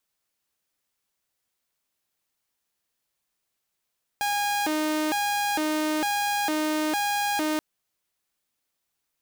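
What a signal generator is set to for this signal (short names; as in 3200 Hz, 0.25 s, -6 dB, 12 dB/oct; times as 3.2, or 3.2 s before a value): siren hi-lo 308–819 Hz 1.1/s saw -21 dBFS 3.38 s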